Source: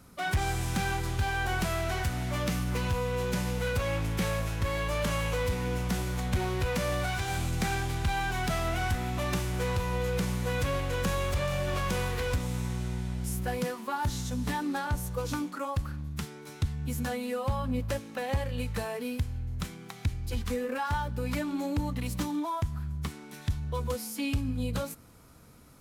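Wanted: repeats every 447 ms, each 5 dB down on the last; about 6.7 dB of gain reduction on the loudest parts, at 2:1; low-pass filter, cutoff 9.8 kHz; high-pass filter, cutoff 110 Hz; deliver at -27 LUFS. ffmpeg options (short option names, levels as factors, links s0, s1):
-af "highpass=110,lowpass=9800,acompressor=threshold=0.0112:ratio=2,aecho=1:1:447|894|1341|1788|2235|2682|3129:0.562|0.315|0.176|0.0988|0.0553|0.031|0.0173,volume=3.16"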